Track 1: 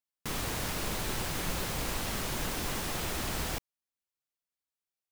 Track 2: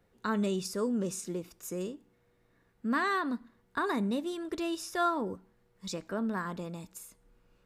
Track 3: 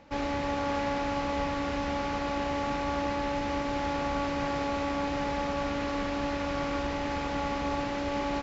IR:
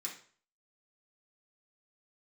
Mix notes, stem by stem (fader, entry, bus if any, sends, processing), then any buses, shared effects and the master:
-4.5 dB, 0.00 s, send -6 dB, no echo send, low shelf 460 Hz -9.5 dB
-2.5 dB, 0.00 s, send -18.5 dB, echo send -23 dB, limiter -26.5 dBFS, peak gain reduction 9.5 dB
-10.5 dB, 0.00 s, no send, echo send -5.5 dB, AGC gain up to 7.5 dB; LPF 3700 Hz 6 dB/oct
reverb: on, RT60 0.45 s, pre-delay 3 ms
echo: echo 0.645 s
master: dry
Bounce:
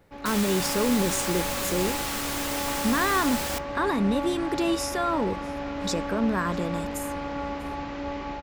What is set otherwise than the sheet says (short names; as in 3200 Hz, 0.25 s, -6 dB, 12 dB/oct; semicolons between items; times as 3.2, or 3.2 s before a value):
stem 1 -4.5 dB -> +4.5 dB; stem 2 -2.5 dB -> +9.0 dB; reverb return -9.0 dB